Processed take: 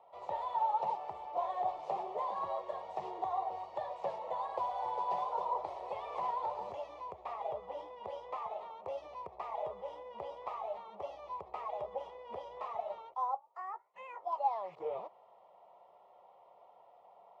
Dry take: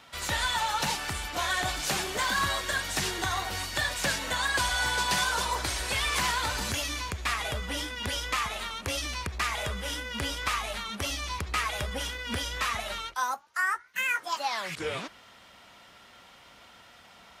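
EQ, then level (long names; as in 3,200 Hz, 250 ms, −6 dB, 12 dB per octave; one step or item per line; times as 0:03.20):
high-pass filter 320 Hz 12 dB per octave
low-pass with resonance 870 Hz, resonance Q 1.8
phaser with its sweep stopped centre 640 Hz, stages 4
−3.5 dB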